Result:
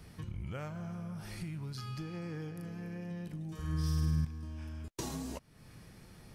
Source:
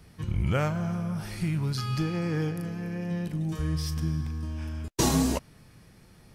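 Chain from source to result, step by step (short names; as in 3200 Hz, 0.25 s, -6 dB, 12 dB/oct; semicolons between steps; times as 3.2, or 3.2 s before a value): compressor 3:1, threshold -43 dBFS, peak gain reduction 17 dB; 3.54–4.25 flutter echo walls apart 8.8 m, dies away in 1.4 s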